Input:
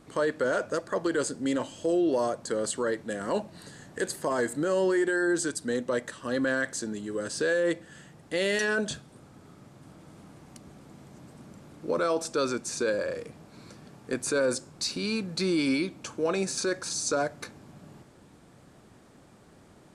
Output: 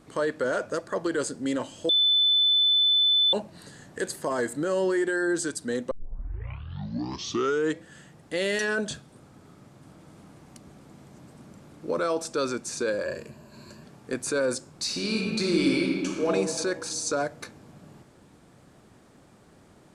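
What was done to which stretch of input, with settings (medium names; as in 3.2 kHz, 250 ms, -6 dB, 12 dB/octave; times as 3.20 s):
1.89–3.33 s: bleep 3.51 kHz -18 dBFS
5.91 s: tape start 1.93 s
13.05–13.84 s: rippled EQ curve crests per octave 1.4, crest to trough 11 dB
14.83–16.28 s: reverb throw, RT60 2 s, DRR -1 dB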